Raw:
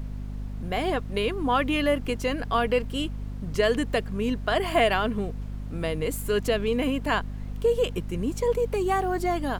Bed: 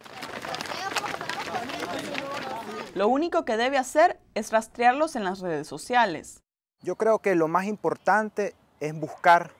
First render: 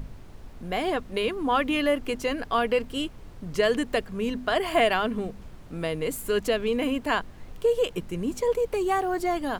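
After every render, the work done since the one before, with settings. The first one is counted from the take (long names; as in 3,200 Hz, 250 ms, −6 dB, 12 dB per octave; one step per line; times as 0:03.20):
hum removal 50 Hz, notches 5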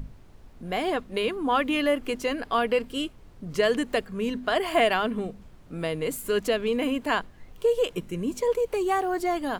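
noise reduction from a noise print 6 dB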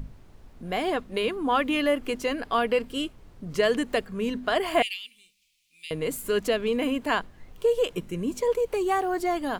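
0:04.82–0:05.91: elliptic high-pass filter 2,400 Hz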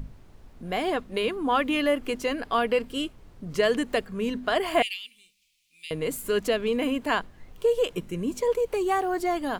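no processing that can be heard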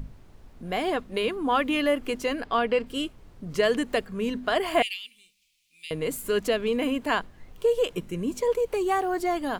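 0:02.44–0:02.87: parametric band 13,000 Hz −14.5 dB 0.84 octaves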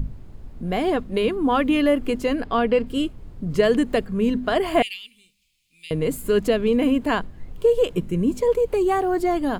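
low-shelf EQ 420 Hz +11.5 dB
notch filter 5,800 Hz, Q 15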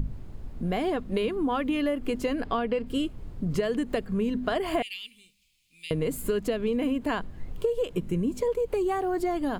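downward compressor, threshold −24 dBFS, peak gain reduction 11 dB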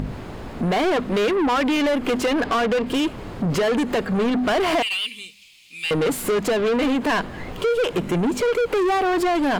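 mid-hump overdrive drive 30 dB, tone 3,100 Hz, clips at −13 dBFS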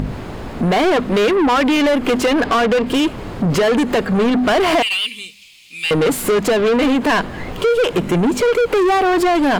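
level +5.5 dB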